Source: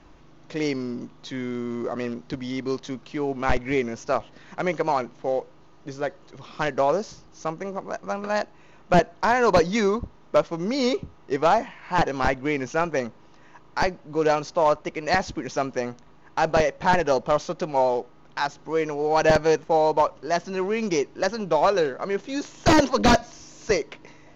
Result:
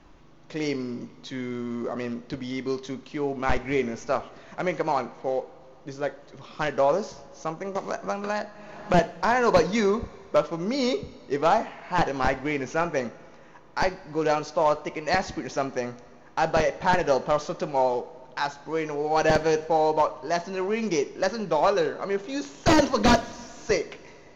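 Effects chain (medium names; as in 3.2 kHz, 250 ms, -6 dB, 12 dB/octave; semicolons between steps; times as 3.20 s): two-slope reverb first 0.38 s, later 2.5 s, from -15 dB, DRR 10.5 dB; 7.75–8.94 s: three bands compressed up and down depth 100%; trim -2 dB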